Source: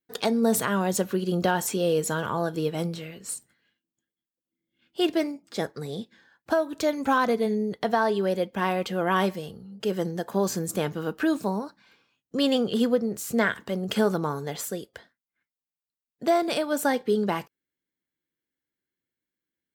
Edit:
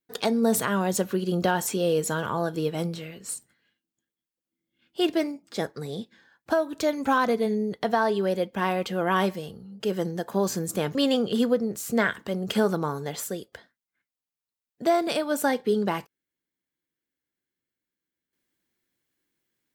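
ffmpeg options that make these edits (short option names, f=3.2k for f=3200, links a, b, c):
-filter_complex "[0:a]asplit=2[a][b];[a]atrim=end=10.952[c];[b]atrim=start=12.358[d];[c][d]acrossfade=d=0.004:c1=hsin:c2=hsin"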